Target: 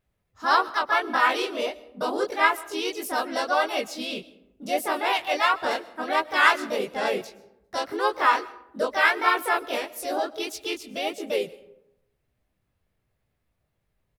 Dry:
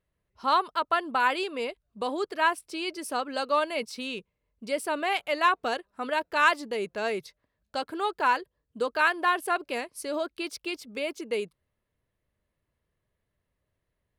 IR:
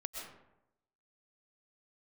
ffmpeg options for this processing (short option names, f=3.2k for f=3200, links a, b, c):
-filter_complex "[0:a]flanger=delay=18.5:depth=6.4:speed=1.6,asplit=3[a][b][c];[b]asetrate=37084,aresample=44100,atempo=1.18921,volume=-13dB[d];[c]asetrate=55563,aresample=44100,atempo=0.793701,volume=-1dB[e];[a][d][e]amix=inputs=3:normalize=0,asplit=2[f][g];[1:a]atrim=start_sample=2205,lowshelf=f=220:g=10.5,highshelf=f=8k:g=11[h];[g][h]afir=irnorm=-1:irlink=0,volume=-16dB[i];[f][i]amix=inputs=2:normalize=0,volume=2.5dB"